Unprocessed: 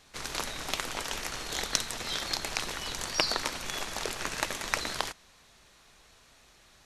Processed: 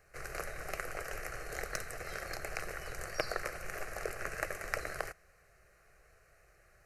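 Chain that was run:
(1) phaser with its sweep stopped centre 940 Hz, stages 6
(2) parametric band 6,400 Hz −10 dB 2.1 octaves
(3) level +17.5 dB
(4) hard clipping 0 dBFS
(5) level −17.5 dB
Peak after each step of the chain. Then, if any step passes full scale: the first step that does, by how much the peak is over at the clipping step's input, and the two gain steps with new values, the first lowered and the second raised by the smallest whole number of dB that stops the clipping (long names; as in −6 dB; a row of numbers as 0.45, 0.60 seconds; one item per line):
−8.0, −12.5, +5.0, 0.0, −17.5 dBFS
step 3, 5.0 dB
step 3 +12.5 dB, step 5 −12.5 dB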